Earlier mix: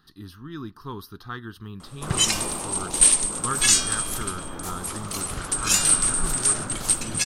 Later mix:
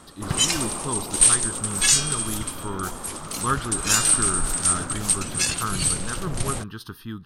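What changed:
speech +5.0 dB; background: entry -1.80 s

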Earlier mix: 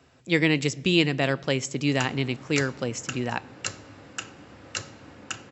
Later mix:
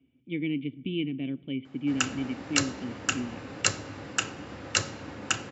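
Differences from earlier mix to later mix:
speech: add cascade formant filter i; background +6.5 dB

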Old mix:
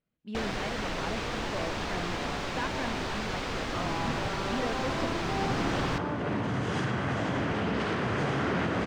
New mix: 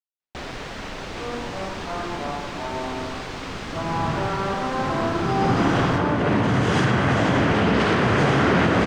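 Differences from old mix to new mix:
speech: muted; second sound +10.5 dB

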